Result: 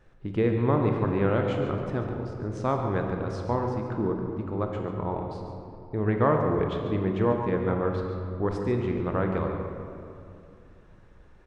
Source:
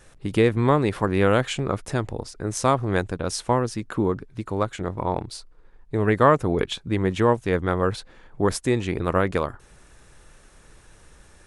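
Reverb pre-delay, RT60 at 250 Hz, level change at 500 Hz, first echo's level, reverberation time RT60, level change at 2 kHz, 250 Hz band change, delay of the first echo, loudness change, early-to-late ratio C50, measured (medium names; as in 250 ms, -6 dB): 26 ms, 3.0 s, -4.0 dB, -10.5 dB, 2.6 s, -8.5 dB, -3.0 dB, 141 ms, -4.0 dB, 3.0 dB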